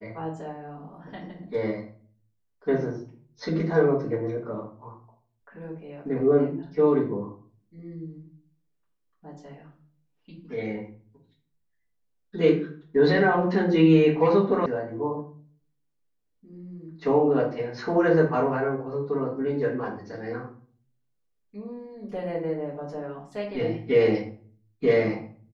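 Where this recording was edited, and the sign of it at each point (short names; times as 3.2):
14.66 sound cut off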